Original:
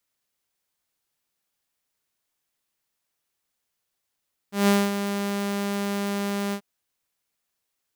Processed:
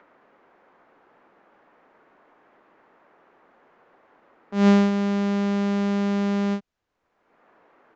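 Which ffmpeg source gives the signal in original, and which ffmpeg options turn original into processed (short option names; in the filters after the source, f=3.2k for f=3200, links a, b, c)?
-f lavfi -i "aevalsrc='0.224*(2*mod(201*t,1)-1)':d=2.086:s=44100,afade=t=in:d=0.159,afade=t=out:st=0.159:d=0.229:silence=0.335,afade=t=out:st=2.01:d=0.076"
-filter_complex "[0:a]aemphasis=mode=reproduction:type=bsi,acrossover=split=260|1700[a][b][c];[b]acompressor=mode=upward:threshold=-32dB:ratio=2.5[d];[a][d][c]amix=inputs=3:normalize=0,aresample=16000,aresample=44100"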